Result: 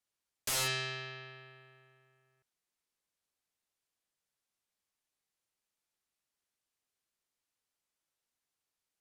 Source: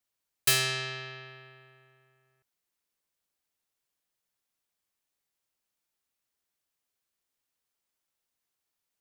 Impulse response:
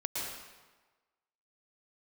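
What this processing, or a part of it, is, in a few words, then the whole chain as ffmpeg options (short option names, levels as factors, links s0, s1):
overflowing digital effects unit: -af "aeval=exprs='(mod(14.1*val(0)+1,2)-1)/14.1':c=same,lowpass=12000,volume=0.75"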